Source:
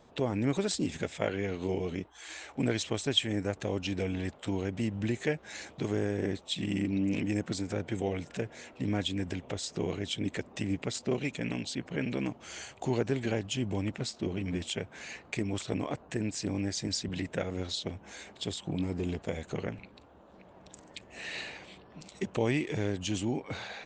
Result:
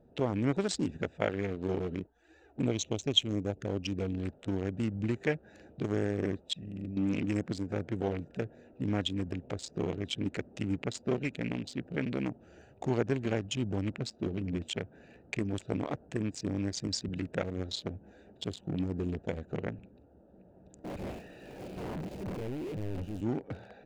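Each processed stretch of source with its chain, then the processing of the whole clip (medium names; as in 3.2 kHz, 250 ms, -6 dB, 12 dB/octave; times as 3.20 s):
2.07–4.18 s: dynamic bell 6 kHz, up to +7 dB, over -51 dBFS, Q 2.2 + touch-sensitive flanger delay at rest 4.8 ms, full sweep at -28.5 dBFS
6.53–6.97 s: gate -30 dBFS, range -7 dB + comb 1.6 ms, depth 46% + transient shaper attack -6 dB, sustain +5 dB
20.84–23.21 s: one-bit comparator + treble shelf 3 kHz -7.5 dB + three bands expanded up and down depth 70%
whole clip: local Wiener filter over 41 samples; dynamic bell 1.4 kHz, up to +3 dB, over -47 dBFS, Q 0.8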